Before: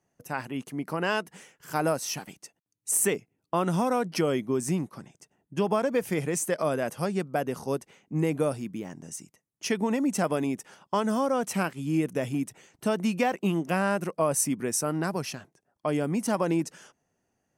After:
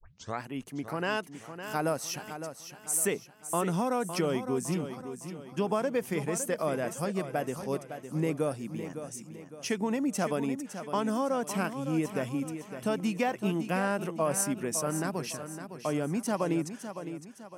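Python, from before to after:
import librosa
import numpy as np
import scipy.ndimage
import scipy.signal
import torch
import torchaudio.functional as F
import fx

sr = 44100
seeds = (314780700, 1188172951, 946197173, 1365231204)

y = fx.tape_start_head(x, sr, length_s=0.41)
y = fx.echo_feedback(y, sr, ms=559, feedback_pct=43, wet_db=-10.0)
y = y * librosa.db_to_amplitude(-3.5)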